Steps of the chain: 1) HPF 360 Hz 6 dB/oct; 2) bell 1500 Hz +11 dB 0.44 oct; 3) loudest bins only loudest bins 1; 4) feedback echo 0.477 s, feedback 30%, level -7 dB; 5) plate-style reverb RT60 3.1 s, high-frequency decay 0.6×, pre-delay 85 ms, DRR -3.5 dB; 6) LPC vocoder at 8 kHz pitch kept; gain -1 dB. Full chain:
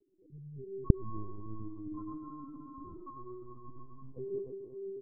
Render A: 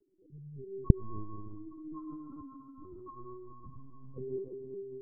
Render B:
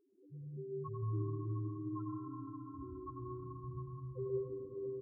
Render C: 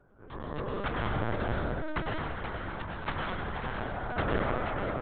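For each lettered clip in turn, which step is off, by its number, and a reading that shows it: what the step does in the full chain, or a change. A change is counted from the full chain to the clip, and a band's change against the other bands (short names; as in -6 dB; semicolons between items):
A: 4, momentary loudness spread change +2 LU; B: 6, 250 Hz band -2.5 dB; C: 3, 1 kHz band +12.0 dB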